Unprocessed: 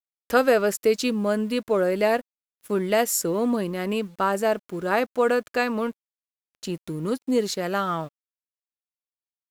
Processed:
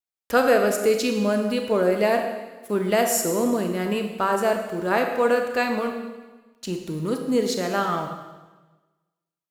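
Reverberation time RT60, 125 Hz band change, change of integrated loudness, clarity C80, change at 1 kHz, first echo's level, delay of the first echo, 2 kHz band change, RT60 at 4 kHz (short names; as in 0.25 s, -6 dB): 1.3 s, +1.5 dB, +1.5 dB, 7.5 dB, +2.0 dB, none, none, +1.5 dB, 1.2 s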